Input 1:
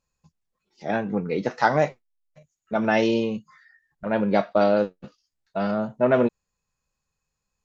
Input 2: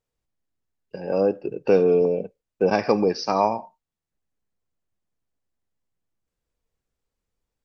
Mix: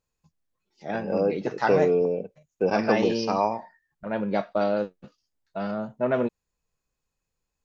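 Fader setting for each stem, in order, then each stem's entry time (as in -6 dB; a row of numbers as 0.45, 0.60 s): -5.0, -3.5 dB; 0.00, 0.00 s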